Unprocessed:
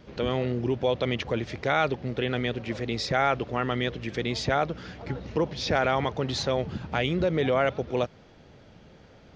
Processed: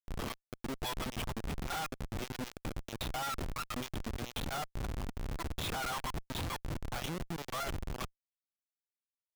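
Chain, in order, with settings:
phaser with its sweep stopped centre 1,900 Hz, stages 6
in parallel at −3.5 dB: soft clipping −25.5 dBFS, distortion −13 dB
on the sum: linear-prediction vocoder at 8 kHz pitch kept
comparator with hysteresis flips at −37.5 dBFS
level −7 dB

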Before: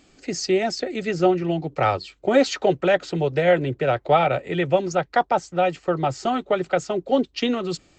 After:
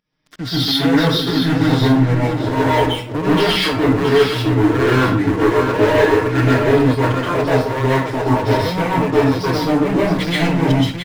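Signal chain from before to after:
comb filter 4.7 ms, depth 82%
change of speed 0.723×
fake sidechain pumping 84 BPM, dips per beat 2, −16 dB, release 212 ms
leveller curve on the samples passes 5
single-tap delay 670 ms −7.5 dB
reversed playback
upward compression, threshold −19 dBFS
reversed playback
dense smooth reverb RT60 0.5 s, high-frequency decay 0.7×, pre-delay 115 ms, DRR −7.5 dB
level −14.5 dB

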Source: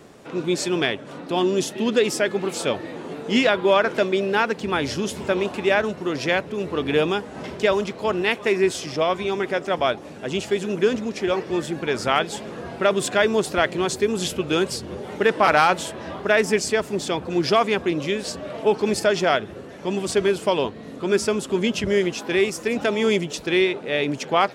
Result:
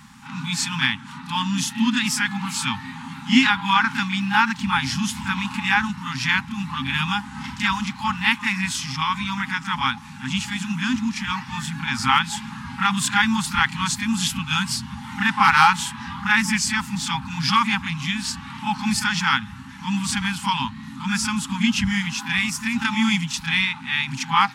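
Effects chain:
backwards echo 31 ms −8 dB
brick-wall band-stop 270–790 Hz
level +3.5 dB

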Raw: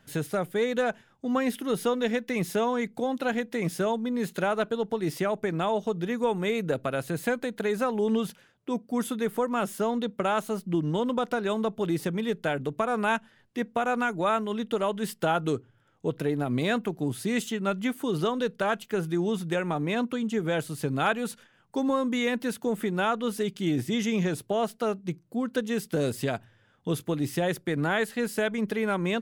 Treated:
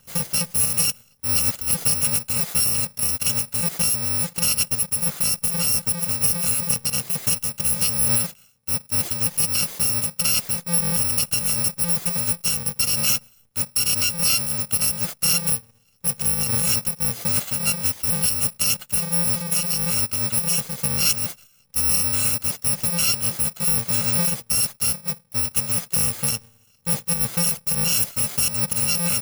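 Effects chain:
samples in bit-reversed order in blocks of 128 samples
level +5.5 dB

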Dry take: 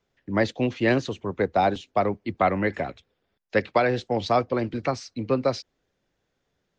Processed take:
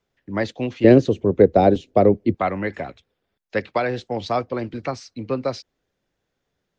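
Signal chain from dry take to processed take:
0:00.84–0:02.35: low shelf with overshoot 700 Hz +10.5 dB, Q 1.5
level −1 dB

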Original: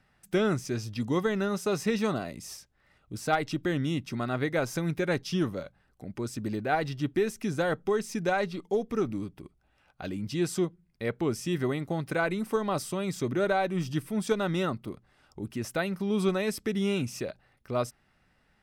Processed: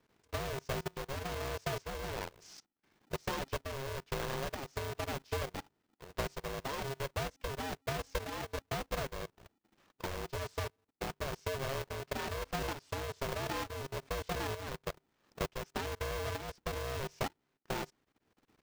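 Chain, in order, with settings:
each half-wave held at its own peak
low-pass filter 6,600 Hz 24 dB per octave
output level in coarse steps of 16 dB
shaped tremolo saw up 1.1 Hz, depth 45%
transient designer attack +6 dB, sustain −8 dB
ring modulator with a square carrier 270 Hz
level −4.5 dB

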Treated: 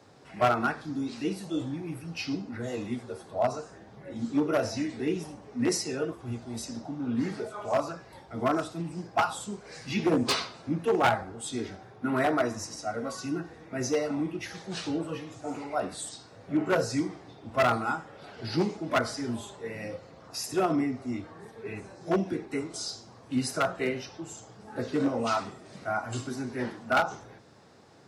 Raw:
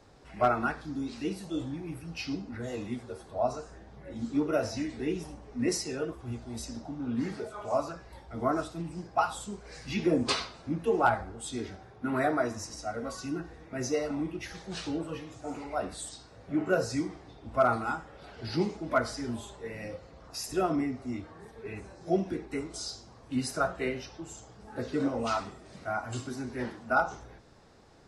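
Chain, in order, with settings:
wavefolder on the positive side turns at −21.5 dBFS
high-pass filter 95 Hz 24 dB per octave
level +2.5 dB

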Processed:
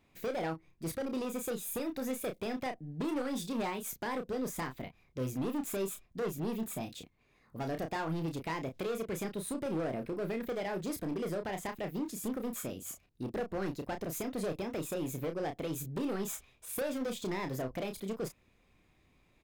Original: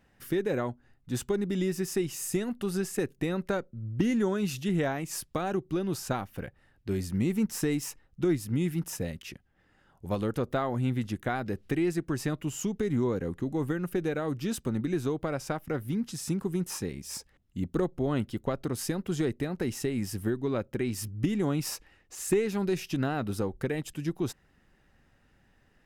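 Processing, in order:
gain into a clipping stage and back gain 27.5 dB
change of speed 1.33×
double-tracking delay 31 ms −7 dB
level −4.5 dB

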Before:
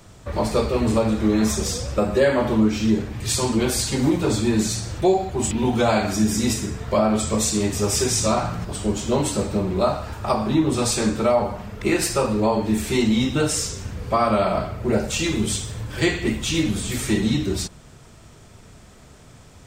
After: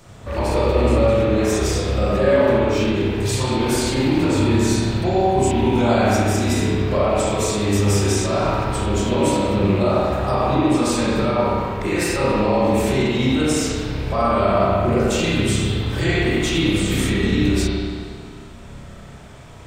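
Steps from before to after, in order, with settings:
loose part that buzzes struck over −23 dBFS, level −26 dBFS
brickwall limiter −16.5 dBFS, peak gain reduction 9.5 dB
spring reverb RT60 1.9 s, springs 30/53 ms, chirp 20 ms, DRR −6.5 dB

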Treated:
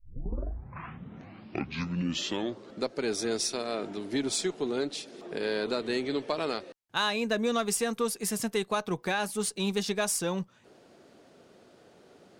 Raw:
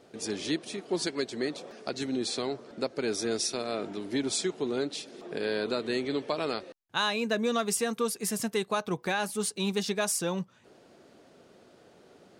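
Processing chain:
turntable start at the beginning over 2.92 s
harmonic generator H 4 −30 dB, 6 −28 dB, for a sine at −14.5 dBFS

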